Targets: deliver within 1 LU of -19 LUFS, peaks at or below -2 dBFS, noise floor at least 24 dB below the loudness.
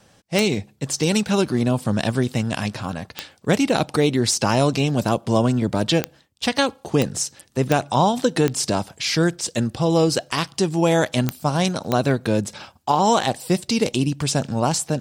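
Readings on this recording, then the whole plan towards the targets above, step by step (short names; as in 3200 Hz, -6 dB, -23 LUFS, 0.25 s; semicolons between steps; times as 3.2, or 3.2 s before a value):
clicks 8; loudness -21.5 LUFS; peak -5.0 dBFS; loudness target -19.0 LUFS
-> de-click; gain +2.5 dB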